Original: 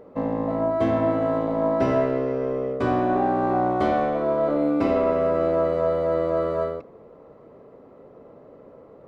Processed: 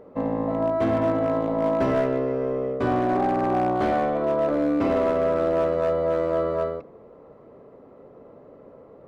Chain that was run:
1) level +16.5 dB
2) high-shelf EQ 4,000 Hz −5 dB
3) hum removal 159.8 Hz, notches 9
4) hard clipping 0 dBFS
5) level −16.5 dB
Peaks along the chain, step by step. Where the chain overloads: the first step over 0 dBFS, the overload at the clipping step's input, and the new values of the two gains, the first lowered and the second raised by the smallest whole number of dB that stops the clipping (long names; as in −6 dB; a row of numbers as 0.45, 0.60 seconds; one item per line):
+7.5, +7.5, +7.0, 0.0, −16.5 dBFS
step 1, 7.0 dB
step 1 +9.5 dB, step 5 −9.5 dB